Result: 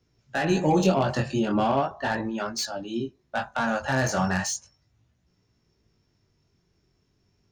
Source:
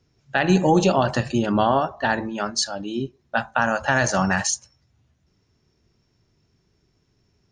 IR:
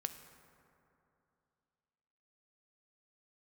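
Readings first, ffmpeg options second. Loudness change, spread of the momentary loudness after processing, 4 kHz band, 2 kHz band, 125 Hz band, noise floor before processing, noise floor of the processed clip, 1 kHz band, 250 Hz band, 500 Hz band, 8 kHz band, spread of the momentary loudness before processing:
-4.5 dB, 11 LU, -5.0 dB, -6.0 dB, -3.0 dB, -67 dBFS, -71 dBFS, -5.0 dB, -3.5 dB, -4.0 dB, -6.0 dB, 9 LU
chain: -filter_complex "[0:a]flanger=delay=17:depth=5.9:speed=0.37,acrossover=split=650[a][b];[b]asoftclip=type=tanh:threshold=-23.5dB[c];[a][c]amix=inputs=2:normalize=0"

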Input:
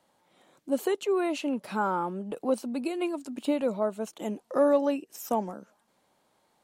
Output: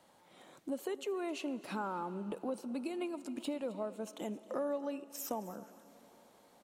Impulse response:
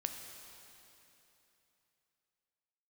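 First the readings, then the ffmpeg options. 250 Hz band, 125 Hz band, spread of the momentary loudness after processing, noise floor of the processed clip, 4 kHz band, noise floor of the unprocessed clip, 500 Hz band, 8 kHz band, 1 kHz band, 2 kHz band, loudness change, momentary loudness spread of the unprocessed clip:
-9.5 dB, -7.5 dB, 8 LU, -65 dBFS, -6.5 dB, -71 dBFS, -11.5 dB, -4.5 dB, -10.5 dB, -9.5 dB, -10.5 dB, 10 LU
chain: -filter_complex "[0:a]acompressor=threshold=-44dB:ratio=3,aecho=1:1:265:0.112,asplit=2[a][b];[1:a]atrim=start_sample=2205,asetrate=28224,aresample=44100[c];[b][c]afir=irnorm=-1:irlink=0,volume=-13dB[d];[a][d]amix=inputs=2:normalize=0,volume=1.5dB"

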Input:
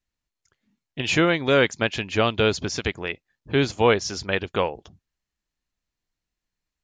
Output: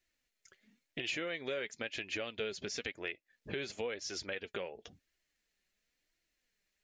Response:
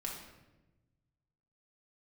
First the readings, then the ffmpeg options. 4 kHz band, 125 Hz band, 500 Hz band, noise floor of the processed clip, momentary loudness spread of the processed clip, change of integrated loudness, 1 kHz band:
-14.0 dB, -24.5 dB, -17.5 dB, -85 dBFS, 8 LU, -17.0 dB, -23.0 dB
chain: -af "alimiter=limit=-17dB:level=0:latency=1:release=318,lowshelf=f=270:g=-10.5,flanger=delay=2.7:depth=2.7:regen=53:speed=0.97:shape=triangular,acompressor=threshold=-51dB:ratio=3,equalizer=f=500:t=o:w=1:g=5,equalizer=f=1k:t=o:w=1:g=-9,equalizer=f=2k:t=o:w=1:g=6,volume=8dB"

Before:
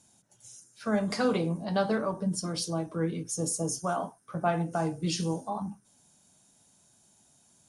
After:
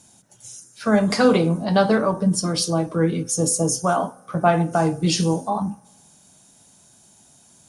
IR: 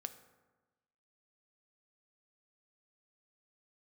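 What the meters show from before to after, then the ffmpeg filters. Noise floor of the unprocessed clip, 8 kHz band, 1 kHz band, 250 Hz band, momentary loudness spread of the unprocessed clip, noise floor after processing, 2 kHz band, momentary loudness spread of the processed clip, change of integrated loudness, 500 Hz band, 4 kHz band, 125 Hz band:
-64 dBFS, +10.0 dB, +10.0 dB, +10.5 dB, 10 LU, -54 dBFS, +10.0 dB, 11 LU, +10.0 dB, +10.5 dB, +10.0 dB, +10.0 dB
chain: -filter_complex "[0:a]asplit=2[a][b];[1:a]atrim=start_sample=2205[c];[b][c]afir=irnorm=-1:irlink=0,volume=-7.5dB[d];[a][d]amix=inputs=2:normalize=0,volume=8dB"

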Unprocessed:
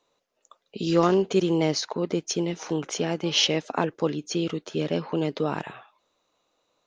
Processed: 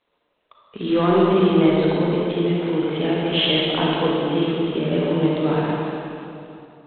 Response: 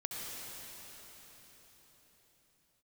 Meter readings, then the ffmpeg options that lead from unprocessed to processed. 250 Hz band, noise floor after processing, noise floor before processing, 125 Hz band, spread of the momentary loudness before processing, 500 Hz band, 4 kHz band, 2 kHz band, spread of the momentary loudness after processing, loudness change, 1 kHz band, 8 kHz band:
+7.5 dB, -70 dBFS, -74 dBFS, +7.5 dB, 8 LU, +6.0 dB, +4.0 dB, +6.0 dB, 13 LU, +6.0 dB, +6.0 dB, under -40 dB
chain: -filter_complex "[0:a]acontrast=64[a];[1:a]atrim=start_sample=2205,asetrate=83790,aresample=44100[b];[a][b]afir=irnorm=-1:irlink=0,volume=3.5dB" -ar 8000 -c:a adpcm_g726 -b:a 24k

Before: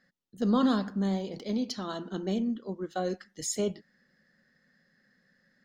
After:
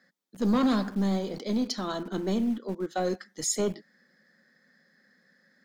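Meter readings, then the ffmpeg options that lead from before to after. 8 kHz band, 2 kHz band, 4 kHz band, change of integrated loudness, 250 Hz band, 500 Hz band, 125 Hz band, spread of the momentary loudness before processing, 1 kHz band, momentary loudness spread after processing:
+4.5 dB, +3.5 dB, +3.0 dB, +2.0 dB, +2.0 dB, +2.0 dB, +2.0 dB, 10 LU, +2.0 dB, 8 LU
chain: -filter_complex "[0:a]bandreject=f=2.8k:w=6.7,acrossover=split=160|5400[a][b][c];[a]acrusher=bits=6:dc=4:mix=0:aa=0.000001[d];[b]asoftclip=type=tanh:threshold=-24dB[e];[d][e][c]amix=inputs=3:normalize=0,volume=4.5dB"

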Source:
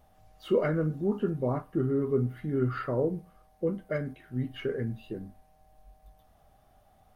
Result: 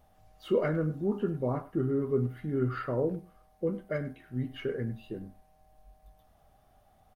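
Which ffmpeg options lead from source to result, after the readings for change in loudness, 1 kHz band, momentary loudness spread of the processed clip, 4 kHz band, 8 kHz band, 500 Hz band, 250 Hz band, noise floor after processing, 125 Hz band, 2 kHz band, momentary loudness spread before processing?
-1.5 dB, -1.5 dB, 12 LU, -1.5 dB, n/a, -1.5 dB, -1.5 dB, -64 dBFS, -1.5 dB, -1.5 dB, 12 LU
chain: -filter_complex "[0:a]asplit=2[a][b];[b]adelay=100,highpass=300,lowpass=3.4k,asoftclip=type=hard:threshold=-22dB,volume=-16dB[c];[a][c]amix=inputs=2:normalize=0,volume=-1.5dB"

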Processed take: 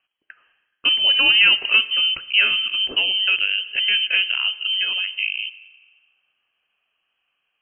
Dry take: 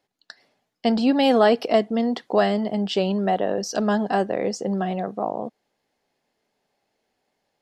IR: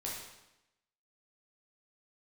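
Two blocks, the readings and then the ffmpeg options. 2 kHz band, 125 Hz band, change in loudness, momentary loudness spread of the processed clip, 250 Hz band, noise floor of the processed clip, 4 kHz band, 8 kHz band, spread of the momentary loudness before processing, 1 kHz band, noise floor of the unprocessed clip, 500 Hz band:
+15.0 dB, under -20 dB, +5.5 dB, 9 LU, -23.0 dB, -75 dBFS, +18.5 dB, under -40 dB, 9 LU, -13.0 dB, -76 dBFS, -22.0 dB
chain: -filter_complex "[0:a]asplit=2[a][b];[1:a]atrim=start_sample=2205,asetrate=27342,aresample=44100[c];[b][c]afir=irnorm=-1:irlink=0,volume=-18dB[d];[a][d]amix=inputs=2:normalize=0,lowpass=f=2.8k:t=q:w=0.5098,lowpass=f=2.8k:t=q:w=0.6013,lowpass=f=2.8k:t=q:w=0.9,lowpass=f=2.8k:t=q:w=2.563,afreqshift=-3300,volume=1.5dB" -ar 44100 -c:a libmp3lame -b:a 32k

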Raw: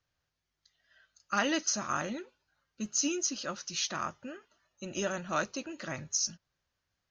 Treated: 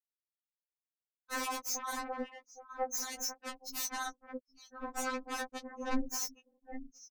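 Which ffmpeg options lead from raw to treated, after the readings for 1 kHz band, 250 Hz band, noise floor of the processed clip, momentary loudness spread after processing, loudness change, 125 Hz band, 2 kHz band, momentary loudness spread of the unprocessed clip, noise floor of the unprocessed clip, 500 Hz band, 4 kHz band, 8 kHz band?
-2.0 dB, -5.5 dB, under -85 dBFS, 14 LU, -5.0 dB, under -15 dB, -4.5 dB, 14 LU, -85 dBFS, -5.0 dB, -6.5 dB, -6.0 dB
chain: -filter_complex "[0:a]highpass=f=67:w=0.5412,highpass=f=67:w=1.3066,afftfilt=real='re*gte(hypot(re,im),0.0562)':imag='im*gte(hypot(re,im),0.0562)':win_size=1024:overlap=0.75,aeval=exprs='0.141*(cos(1*acos(clip(val(0)/0.141,-1,1)))-cos(1*PI/2))+0.0355*(cos(5*acos(clip(val(0)/0.141,-1,1)))-cos(5*PI/2))+0.00224*(cos(7*acos(clip(val(0)/0.141,-1,1)))-cos(7*PI/2))+0.00158*(cos(8*acos(clip(val(0)/0.141,-1,1)))-cos(8*PI/2))':c=same,equalizer=f=400:t=o:w=0.33:g=-4,equalizer=f=630:t=o:w=0.33:g=-5,equalizer=f=2.5k:t=o:w=0.33:g=6,asoftclip=type=tanh:threshold=-23dB,aeval=exprs='val(0)*sin(2*PI*130*n/s)':c=same,acompressor=threshold=-35dB:ratio=8,asplit=2[a][b];[b]adelay=816.3,volume=-17dB,highshelf=f=4k:g=-18.4[c];[a][c]amix=inputs=2:normalize=0,aeval=exprs='0.0376*sin(PI/2*3.55*val(0)/0.0376)':c=same,equalizer=f=3.2k:w=1.7:g=-9,afftfilt=real='re*3.46*eq(mod(b,12),0)':imag='im*3.46*eq(mod(b,12),0)':win_size=2048:overlap=0.75"

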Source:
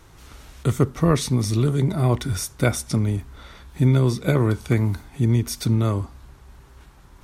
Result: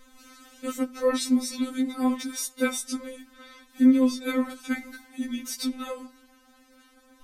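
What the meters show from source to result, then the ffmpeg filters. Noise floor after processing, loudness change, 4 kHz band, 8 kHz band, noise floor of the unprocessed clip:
-59 dBFS, -5.0 dB, -2.0 dB, -2.5 dB, -49 dBFS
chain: -af "asuperstop=centerf=880:order=4:qfactor=3.3,afftfilt=real='re*3.46*eq(mod(b,12),0)':imag='im*3.46*eq(mod(b,12),0)':win_size=2048:overlap=0.75"

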